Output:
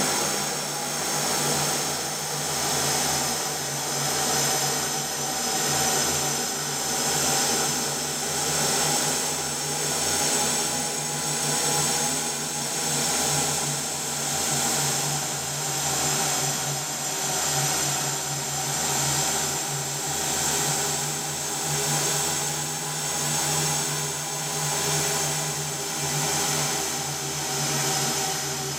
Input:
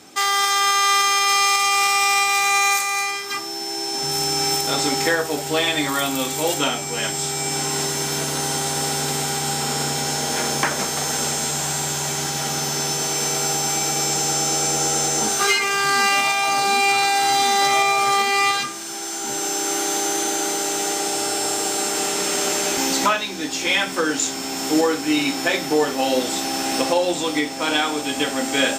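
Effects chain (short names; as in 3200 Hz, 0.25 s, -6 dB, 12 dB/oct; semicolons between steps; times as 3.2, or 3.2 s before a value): wow and flutter 70 cents; Paulstretch 21×, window 0.50 s, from 10.86; tremolo 0.68 Hz, depth 45%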